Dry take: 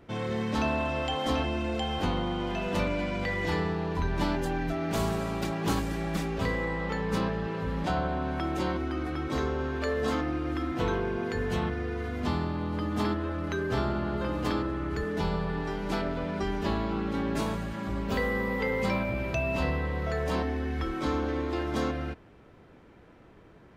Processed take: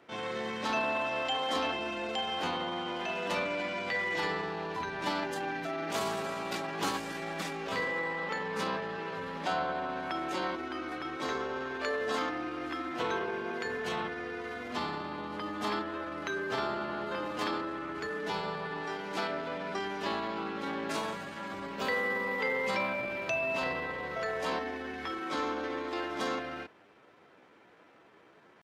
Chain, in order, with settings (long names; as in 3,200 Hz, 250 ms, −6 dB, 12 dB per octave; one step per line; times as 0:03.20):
meter weighting curve A
tempo change 0.83×